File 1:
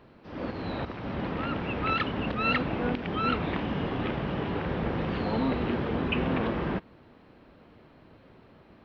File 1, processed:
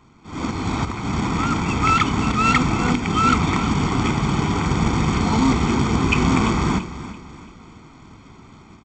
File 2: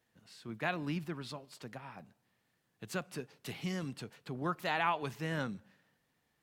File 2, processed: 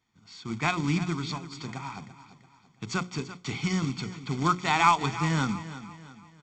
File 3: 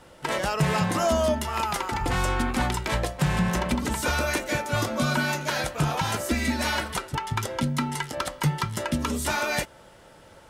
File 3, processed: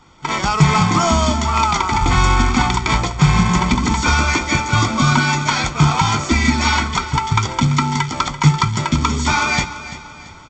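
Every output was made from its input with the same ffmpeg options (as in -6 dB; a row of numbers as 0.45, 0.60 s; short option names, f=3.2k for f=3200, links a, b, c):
-af "bandreject=f=60:t=h:w=6,bandreject=f=120:t=h:w=6,bandreject=f=180:t=h:w=6,bandreject=f=240:t=h:w=6,bandreject=f=300:t=h:w=6,bandreject=f=360:t=h:w=6,bandreject=f=420:t=h:w=6,bandreject=f=480:t=h:w=6,bandreject=f=540:t=h:w=6,dynaudnorm=f=190:g=3:m=8dB,aresample=16000,acrusher=bits=3:mode=log:mix=0:aa=0.000001,aresample=44100,aecho=1:1:0.9:0.77,aecho=1:1:338|676|1014|1352:0.2|0.0818|0.0335|0.0138"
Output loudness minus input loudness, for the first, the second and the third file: +10.0, +10.0, +10.0 LU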